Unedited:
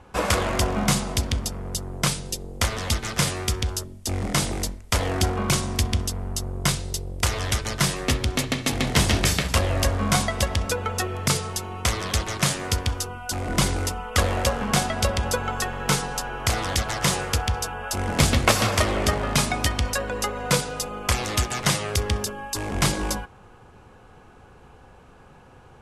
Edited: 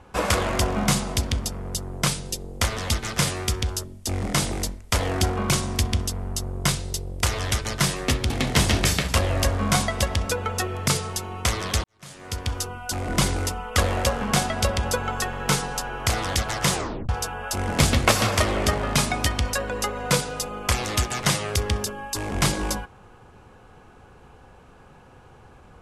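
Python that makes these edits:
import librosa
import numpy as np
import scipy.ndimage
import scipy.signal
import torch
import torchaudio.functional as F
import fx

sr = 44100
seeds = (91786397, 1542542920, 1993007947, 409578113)

y = fx.edit(x, sr, fx.cut(start_s=8.3, length_s=0.4),
    fx.fade_in_span(start_s=12.24, length_s=0.73, curve='qua'),
    fx.tape_stop(start_s=17.15, length_s=0.34), tone=tone)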